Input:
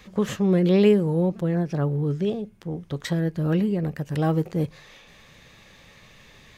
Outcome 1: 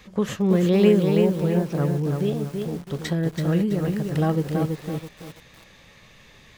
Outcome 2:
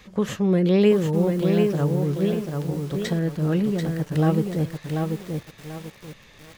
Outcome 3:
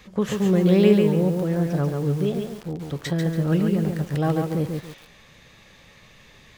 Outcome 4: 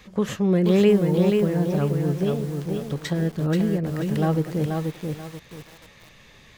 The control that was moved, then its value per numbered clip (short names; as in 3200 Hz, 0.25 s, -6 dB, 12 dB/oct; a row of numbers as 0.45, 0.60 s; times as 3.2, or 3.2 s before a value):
lo-fi delay, time: 0.33, 0.739, 0.141, 0.483 s